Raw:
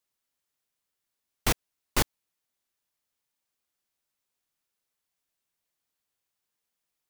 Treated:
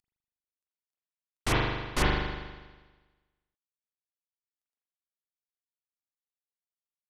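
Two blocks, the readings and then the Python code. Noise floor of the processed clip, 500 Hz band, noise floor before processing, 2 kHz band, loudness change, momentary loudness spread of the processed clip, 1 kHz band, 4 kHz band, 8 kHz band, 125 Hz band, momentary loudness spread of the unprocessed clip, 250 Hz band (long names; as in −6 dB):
below −85 dBFS, +4.0 dB, −85 dBFS, +4.0 dB, +0.5 dB, 12 LU, +4.0 dB, 0.0 dB, −6.5 dB, +5.0 dB, 4 LU, +3.5 dB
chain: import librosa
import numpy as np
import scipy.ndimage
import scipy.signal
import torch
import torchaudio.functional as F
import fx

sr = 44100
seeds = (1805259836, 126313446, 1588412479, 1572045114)

y = fx.cvsd(x, sr, bps=64000)
y = fx.rev_spring(y, sr, rt60_s=1.3, pass_ms=(40,), chirp_ms=40, drr_db=-7.0)
y = F.gain(torch.from_numpy(y), -3.5).numpy()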